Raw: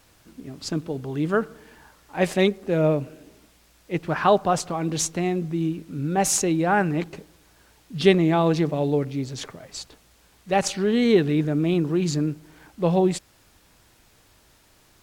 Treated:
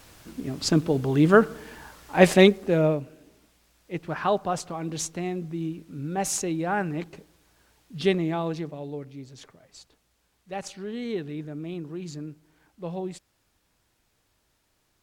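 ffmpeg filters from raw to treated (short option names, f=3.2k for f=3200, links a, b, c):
-af "volume=6dB,afade=t=out:st=2.26:d=0.76:silence=0.251189,afade=t=out:st=8.12:d=0.67:silence=0.446684"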